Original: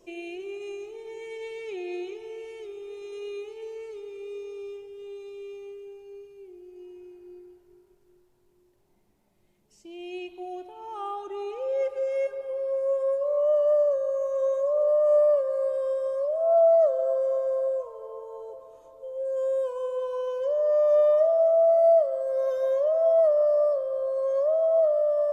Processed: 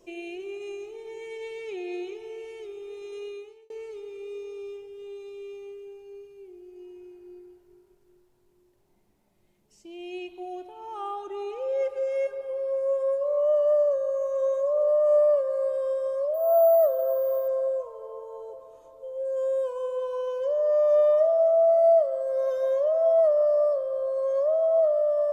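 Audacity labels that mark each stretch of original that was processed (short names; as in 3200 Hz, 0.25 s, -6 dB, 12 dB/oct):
3.200000	3.700000	fade out
16.340000	17.480000	careless resampling rate divided by 3×, down filtered, up hold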